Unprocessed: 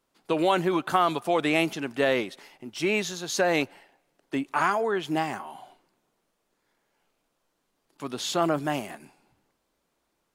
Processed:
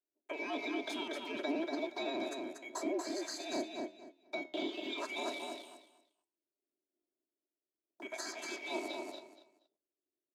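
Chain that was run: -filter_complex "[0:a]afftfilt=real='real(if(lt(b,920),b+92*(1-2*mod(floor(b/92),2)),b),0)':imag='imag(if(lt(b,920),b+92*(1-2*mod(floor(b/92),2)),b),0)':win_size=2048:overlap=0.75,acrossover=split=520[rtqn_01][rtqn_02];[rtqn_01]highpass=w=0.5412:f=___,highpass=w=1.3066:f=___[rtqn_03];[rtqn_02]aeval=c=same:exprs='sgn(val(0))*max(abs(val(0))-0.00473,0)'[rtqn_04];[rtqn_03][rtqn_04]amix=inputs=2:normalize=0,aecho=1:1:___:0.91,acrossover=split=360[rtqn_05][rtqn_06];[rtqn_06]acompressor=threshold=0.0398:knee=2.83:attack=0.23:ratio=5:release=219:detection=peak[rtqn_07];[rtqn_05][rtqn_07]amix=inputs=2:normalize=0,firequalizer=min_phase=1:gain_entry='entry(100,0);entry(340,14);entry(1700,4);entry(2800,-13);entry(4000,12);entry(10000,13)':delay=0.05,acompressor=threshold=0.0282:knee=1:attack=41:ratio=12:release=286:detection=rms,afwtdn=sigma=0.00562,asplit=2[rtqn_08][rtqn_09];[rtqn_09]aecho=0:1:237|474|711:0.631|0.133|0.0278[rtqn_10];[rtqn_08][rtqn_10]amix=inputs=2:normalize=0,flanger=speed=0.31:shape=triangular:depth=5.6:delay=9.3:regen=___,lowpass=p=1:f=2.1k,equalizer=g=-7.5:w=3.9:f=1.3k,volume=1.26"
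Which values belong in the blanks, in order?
260, 260, 3.1, -81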